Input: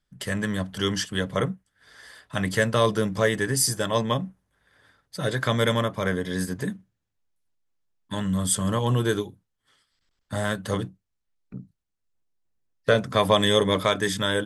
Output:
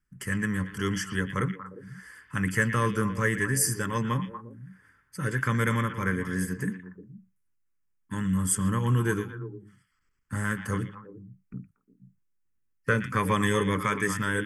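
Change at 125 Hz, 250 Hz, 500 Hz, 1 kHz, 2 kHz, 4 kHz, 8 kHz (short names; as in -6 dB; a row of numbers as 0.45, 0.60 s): -0.5, -1.5, -8.5, -2.5, 0.0, -12.5, -2.5 dB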